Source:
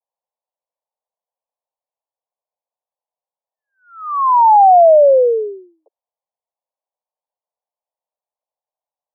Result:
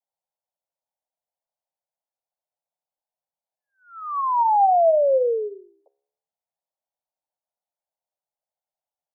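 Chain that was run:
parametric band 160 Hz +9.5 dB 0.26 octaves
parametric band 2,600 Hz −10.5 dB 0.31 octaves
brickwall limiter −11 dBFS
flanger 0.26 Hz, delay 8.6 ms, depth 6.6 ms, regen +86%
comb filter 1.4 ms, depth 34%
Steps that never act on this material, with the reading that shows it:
parametric band 160 Hz: nothing at its input below 360 Hz
parametric band 2,600 Hz: nothing at its input above 1,300 Hz

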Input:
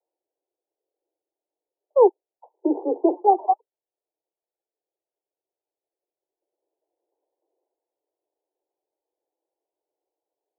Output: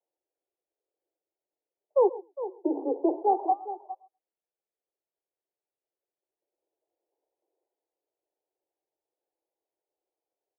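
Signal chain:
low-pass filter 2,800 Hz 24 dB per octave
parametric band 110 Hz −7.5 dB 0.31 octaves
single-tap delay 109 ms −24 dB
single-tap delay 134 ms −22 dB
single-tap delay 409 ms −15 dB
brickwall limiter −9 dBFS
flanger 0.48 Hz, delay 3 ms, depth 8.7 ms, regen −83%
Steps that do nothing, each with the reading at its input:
low-pass filter 2,800 Hz: nothing at its input above 1,100 Hz
parametric band 110 Hz: nothing at its input below 250 Hz

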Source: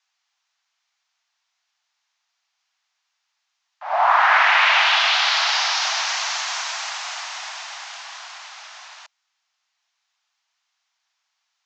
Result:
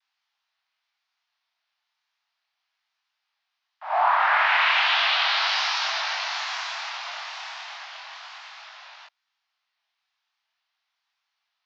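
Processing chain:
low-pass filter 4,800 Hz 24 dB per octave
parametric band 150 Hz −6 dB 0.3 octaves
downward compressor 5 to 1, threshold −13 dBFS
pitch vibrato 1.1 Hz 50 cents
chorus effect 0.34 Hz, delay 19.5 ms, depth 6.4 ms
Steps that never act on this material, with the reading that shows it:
parametric band 150 Hz: nothing at its input below 510 Hz

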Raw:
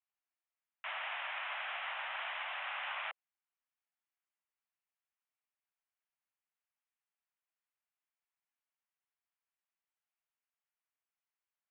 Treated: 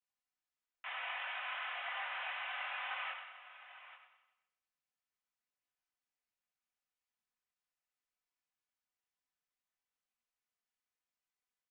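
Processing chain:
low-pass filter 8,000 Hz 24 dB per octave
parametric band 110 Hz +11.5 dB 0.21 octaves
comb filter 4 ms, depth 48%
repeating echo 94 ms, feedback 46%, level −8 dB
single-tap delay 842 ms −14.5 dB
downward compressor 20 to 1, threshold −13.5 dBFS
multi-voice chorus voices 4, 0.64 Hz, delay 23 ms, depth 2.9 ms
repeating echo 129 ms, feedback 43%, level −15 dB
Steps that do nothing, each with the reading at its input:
low-pass filter 8,000 Hz: nothing at its input above 4,100 Hz
parametric band 110 Hz: nothing at its input below 480 Hz
downward compressor, threshold −13.5 dBFS: peak of its input −25.0 dBFS

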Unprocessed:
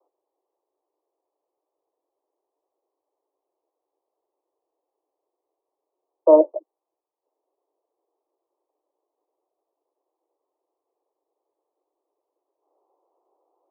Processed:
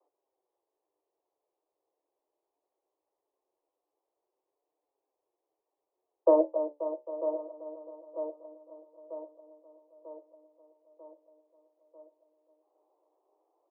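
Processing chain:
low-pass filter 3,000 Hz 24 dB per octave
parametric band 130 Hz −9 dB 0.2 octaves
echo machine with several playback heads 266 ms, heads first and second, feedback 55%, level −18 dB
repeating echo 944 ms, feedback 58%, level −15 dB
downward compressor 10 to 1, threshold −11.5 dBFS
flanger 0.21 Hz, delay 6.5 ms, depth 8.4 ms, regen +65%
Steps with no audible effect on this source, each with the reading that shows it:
low-pass filter 3,000 Hz: nothing at its input above 960 Hz
parametric band 130 Hz: nothing at its input below 290 Hz

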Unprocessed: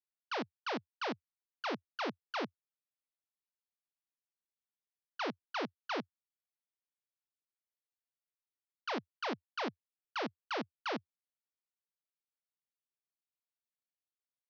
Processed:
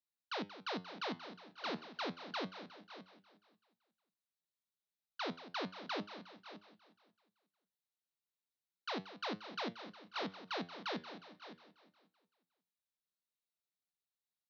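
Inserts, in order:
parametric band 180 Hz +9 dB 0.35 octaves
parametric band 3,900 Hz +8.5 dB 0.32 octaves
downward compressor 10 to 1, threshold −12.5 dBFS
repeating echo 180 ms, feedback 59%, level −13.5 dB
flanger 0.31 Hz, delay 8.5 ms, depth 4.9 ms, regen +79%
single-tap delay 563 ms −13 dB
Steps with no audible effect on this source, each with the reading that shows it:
downward compressor, threshold −12.5 dBFS: peak of its input −25.0 dBFS

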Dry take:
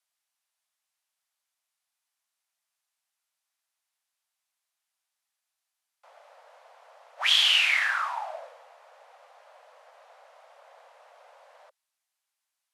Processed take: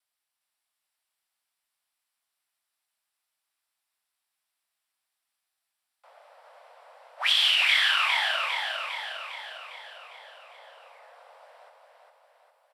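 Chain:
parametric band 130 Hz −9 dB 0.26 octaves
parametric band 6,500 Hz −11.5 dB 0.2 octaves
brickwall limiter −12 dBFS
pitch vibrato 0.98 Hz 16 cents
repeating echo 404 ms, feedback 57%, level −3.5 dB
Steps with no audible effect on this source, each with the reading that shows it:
parametric band 130 Hz: nothing at its input below 480 Hz

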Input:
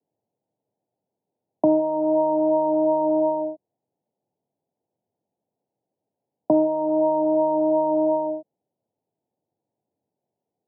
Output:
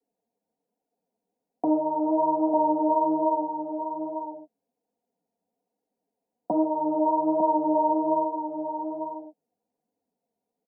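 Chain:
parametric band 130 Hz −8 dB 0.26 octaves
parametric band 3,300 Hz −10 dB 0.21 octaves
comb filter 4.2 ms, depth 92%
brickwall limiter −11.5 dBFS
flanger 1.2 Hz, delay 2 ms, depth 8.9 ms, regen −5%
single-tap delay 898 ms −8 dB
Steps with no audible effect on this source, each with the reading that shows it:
parametric band 3,300 Hz: nothing at its input above 960 Hz

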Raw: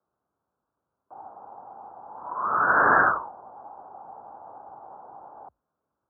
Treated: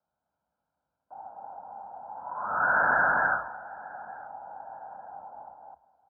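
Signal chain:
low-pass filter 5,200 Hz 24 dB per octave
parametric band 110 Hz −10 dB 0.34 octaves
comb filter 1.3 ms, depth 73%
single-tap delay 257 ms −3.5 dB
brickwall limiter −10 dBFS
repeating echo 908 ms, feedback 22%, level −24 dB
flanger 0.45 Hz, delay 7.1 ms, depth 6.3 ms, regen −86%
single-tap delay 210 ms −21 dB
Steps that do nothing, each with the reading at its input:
low-pass filter 5,200 Hz: nothing at its input above 1,900 Hz

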